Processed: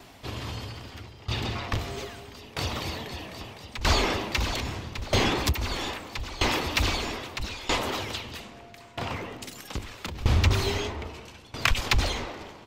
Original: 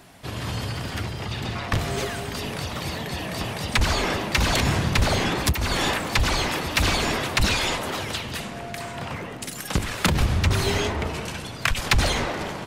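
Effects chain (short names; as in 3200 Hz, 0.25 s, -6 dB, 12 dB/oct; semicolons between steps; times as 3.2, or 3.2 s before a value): fifteen-band EQ 160 Hz -9 dB, 630 Hz -3 dB, 1600 Hz -5 dB, 10000 Hz -10 dB; dB-ramp tremolo decaying 0.78 Hz, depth 19 dB; gain +4 dB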